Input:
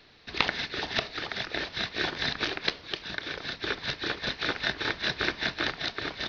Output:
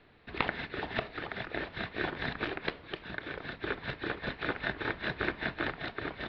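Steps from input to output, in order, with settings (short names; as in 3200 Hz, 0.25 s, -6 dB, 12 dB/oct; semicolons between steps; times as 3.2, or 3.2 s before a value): air absorption 490 m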